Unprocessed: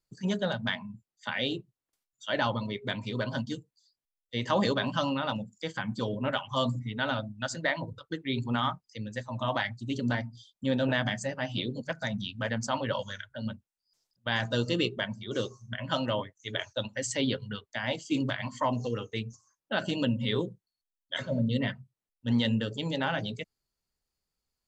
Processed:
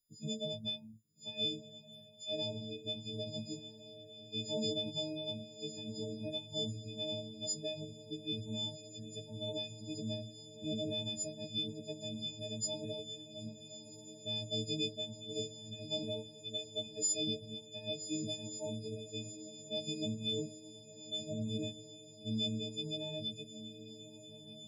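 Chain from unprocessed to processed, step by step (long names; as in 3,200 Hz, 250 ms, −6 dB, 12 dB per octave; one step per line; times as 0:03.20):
every partial snapped to a pitch grid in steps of 6 semitones
Chebyshev band-stop filter 600–3,200 Hz, order 3
harmonic and percussive parts rebalanced harmonic −5 dB
on a send: feedback delay with all-pass diffusion 1,263 ms, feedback 73%, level −13.5 dB
on the sum: level −5.5 dB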